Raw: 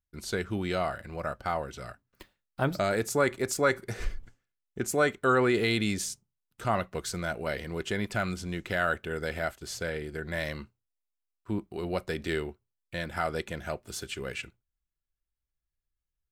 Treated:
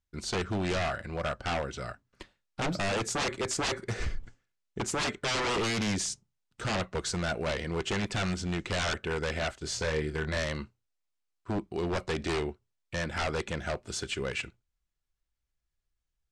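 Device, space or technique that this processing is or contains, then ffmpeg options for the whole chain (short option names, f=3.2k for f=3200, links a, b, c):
synthesiser wavefolder: -filter_complex "[0:a]aeval=exprs='0.0398*(abs(mod(val(0)/0.0398+3,4)-2)-1)':c=same,lowpass=f=8.3k:w=0.5412,lowpass=f=8.3k:w=1.3066,asettb=1/sr,asplit=3[a][b][c];[a]atrim=end=9.594[d];[b]atrim=start=9.59:end=10.38,asetpts=PTS-STARTPTS,afade=t=in:d=0.004:c=qsin,afade=t=out:st=0.786:d=0.004:c=qsin,asplit=2[e][f];[f]adelay=26,volume=-6dB[g];[e][g]amix=inputs=2:normalize=0,atrim=end_sample=34839[h];[c]atrim=start=10.376[i];[d][h]acrossfade=d=0.004:c1=hsin:c2=qsin[j];[j][i]acrossfade=d=0.004:c1=qsin:c2=hsin,volume=3.5dB"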